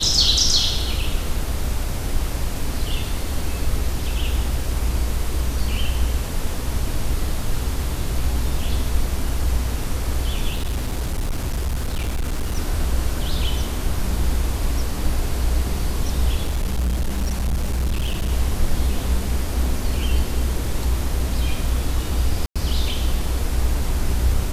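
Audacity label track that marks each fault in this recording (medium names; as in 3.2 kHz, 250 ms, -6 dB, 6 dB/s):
10.520000	12.580000	clipped -19 dBFS
16.430000	18.320000	clipped -17.5 dBFS
22.460000	22.560000	dropout 96 ms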